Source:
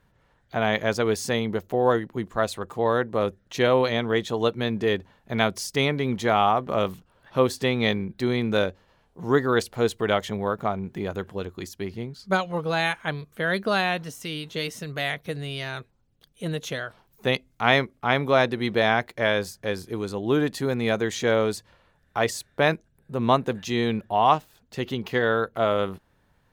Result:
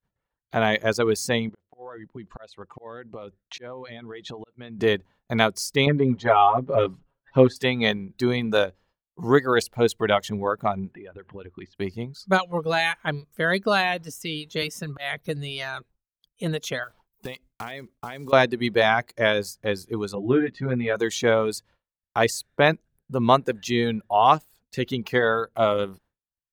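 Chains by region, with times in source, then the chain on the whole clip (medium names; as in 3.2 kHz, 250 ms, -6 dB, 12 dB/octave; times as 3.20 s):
1.49–4.79 s: low-pass 4.7 kHz + slow attack 779 ms + compression 10:1, threshold -35 dBFS
5.86–7.56 s: tape spacing loss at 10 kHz 25 dB + comb 7.3 ms, depth 99%
10.91–11.76 s: low-pass 2.9 kHz 24 dB/octave + compression 8:1, threshold -36 dBFS
14.62–15.22 s: slow attack 183 ms + three bands compressed up and down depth 40%
16.83–18.33 s: block-companded coder 5-bit + compression 16:1, threshold -32 dBFS
20.15–20.96 s: Chebyshev low-pass 1.7 kHz + peaking EQ 860 Hz -9.5 dB 0.88 oct + doubling 16 ms -4.5 dB
whole clip: reverb removal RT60 1.4 s; expander -52 dBFS; trim +3 dB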